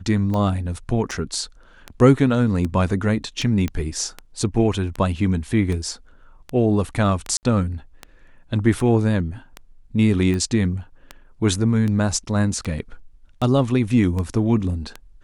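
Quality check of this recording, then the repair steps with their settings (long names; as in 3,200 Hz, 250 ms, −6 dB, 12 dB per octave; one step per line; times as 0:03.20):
scratch tick 78 rpm −15 dBFS
0:01.11: drop-out 4.5 ms
0:03.68: click −13 dBFS
0:07.37–0:07.43: drop-out 59 ms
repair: click removal
repair the gap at 0:01.11, 4.5 ms
repair the gap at 0:07.37, 59 ms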